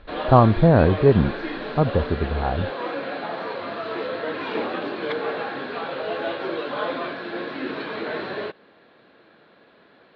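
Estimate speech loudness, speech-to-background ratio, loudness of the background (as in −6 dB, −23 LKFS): −19.5 LKFS, 10.0 dB, −29.5 LKFS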